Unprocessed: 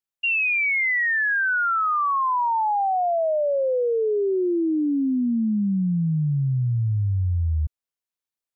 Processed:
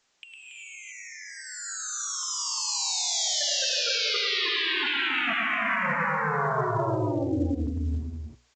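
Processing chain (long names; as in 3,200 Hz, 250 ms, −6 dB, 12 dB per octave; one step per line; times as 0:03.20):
high-pass filter 280 Hz 12 dB per octave
0:02.23–0:03.99: high-shelf EQ 2,100 Hz −7 dB
mains-hum notches 60/120/180/240/300/360/420/480/540/600 Hz
brickwall limiter −29 dBFS, peak gain reduction 12 dB
sine wavefolder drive 16 dB, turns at −29 dBFS
loudspeakers that aren't time-aligned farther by 36 metres −4 dB, 96 metres −4 dB
reverb whose tail is shaped and stops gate 410 ms rising, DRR −1 dB
A-law companding 128 kbit/s 16,000 Hz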